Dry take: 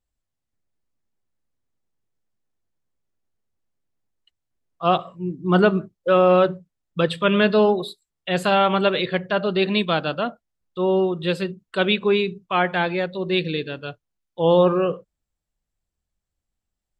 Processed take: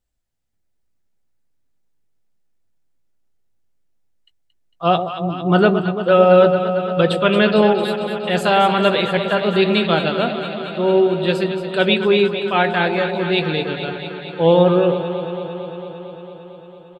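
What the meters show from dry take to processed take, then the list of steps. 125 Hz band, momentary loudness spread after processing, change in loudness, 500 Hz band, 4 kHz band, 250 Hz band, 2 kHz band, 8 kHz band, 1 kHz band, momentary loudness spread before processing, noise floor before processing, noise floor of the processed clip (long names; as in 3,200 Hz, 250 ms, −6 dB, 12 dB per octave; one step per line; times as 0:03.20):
+5.0 dB, 13 LU, +4.0 dB, +4.5 dB, +4.5 dB, +4.0 dB, +4.0 dB, can't be measured, +4.0 dB, 12 LU, −83 dBFS, −65 dBFS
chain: notch filter 1,100 Hz, Q 10
double-tracking delay 18 ms −13 dB
on a send: delay that swaps between a low-pass and a high-pass 113 ms, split 830 Hz, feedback 87%, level −8 dB
on the sum: level +3 dB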